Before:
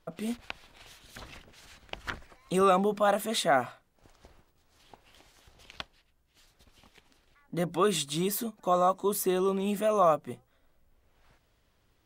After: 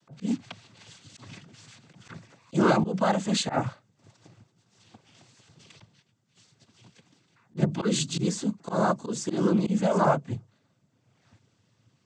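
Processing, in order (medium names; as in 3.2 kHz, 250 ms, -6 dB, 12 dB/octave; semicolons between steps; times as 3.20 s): noise-vocoded speech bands 16; tone controls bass +14 dB, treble +6 dB; slow attack 104 ms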